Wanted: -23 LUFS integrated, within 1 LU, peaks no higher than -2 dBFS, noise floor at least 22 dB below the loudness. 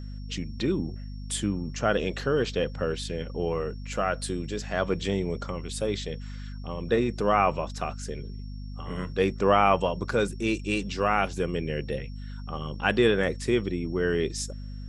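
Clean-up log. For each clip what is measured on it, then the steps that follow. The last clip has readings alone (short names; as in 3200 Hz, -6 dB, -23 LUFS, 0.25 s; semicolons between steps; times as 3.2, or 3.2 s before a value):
hum 50 Hz; harmonics up to 250 Hz; hum level -35 dBFS; steady tone 5500 Hz; tone level -56 dBFS; loudness -28.0 LUFS; peak -7.0 dBFS; loudness target -23.0 LUFS
-> de-hum 50 Hz, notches 5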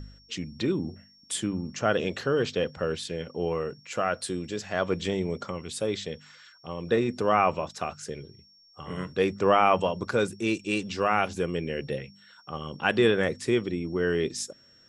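hum none; steady tone 5500 Hz; tone level -56 dBFS
-> notch 5500 Hz, Q 30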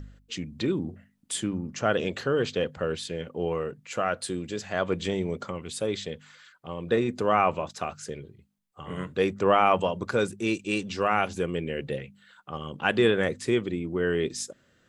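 steady tone none; loudness -28.0 LUFS; peak -8.0 dBFS; loudness target -23.0 LUFS
-> gain +5 dB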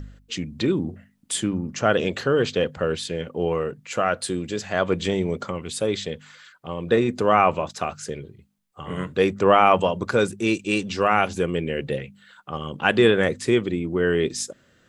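loudness -23.0 LUFS; peak -3.0 dBFS; noise floor -60 dBFS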